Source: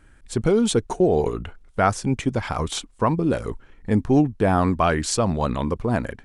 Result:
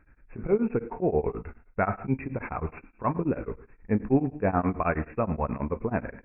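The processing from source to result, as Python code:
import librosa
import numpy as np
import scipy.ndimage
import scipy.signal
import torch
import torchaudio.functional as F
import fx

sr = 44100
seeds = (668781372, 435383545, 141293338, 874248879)

y = fx.brickwall_lowpass(x, sr, high_hz=2700.0)
y = fx.rev_gated(y, sr, seeds[0], gate_ms=220, shape='falling', drr_db=8.5)
y = y * np.abs(np.cos(np.pi * 9.4 * np.arange(len(y)) / sr))
y = y * librosa.db_to_amplitude(-4.0)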